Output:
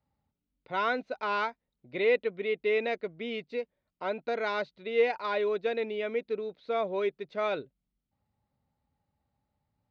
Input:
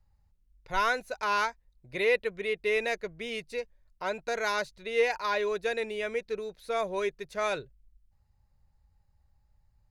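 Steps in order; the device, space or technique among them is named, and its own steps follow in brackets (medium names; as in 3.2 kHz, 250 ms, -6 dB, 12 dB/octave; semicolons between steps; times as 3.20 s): kitchen radio (cabinet simulation 170–3600 Hz, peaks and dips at 260 Hz +9 dB, 1 kHz -4 dB, 1.7 kHz -8 dB, 2.6 kHz -4 dB); trim +1 dB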